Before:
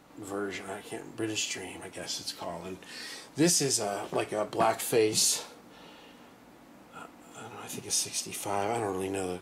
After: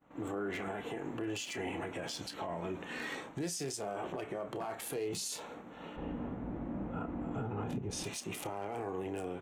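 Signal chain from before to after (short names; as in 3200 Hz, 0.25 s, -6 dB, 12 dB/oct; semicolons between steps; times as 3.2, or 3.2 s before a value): Wiener smoothing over 9 samples; 5.96–8.04 tilt -4.5 dB/oct; expander -48 dBFS; compressor 6:1, threshold -37 dBFS, peak gain reduction 15.5 dB; limiter -36.5 dBFS, peak gain reduction 11 dB; doubler 30 ms -12.5 dB; gain +6.5 dB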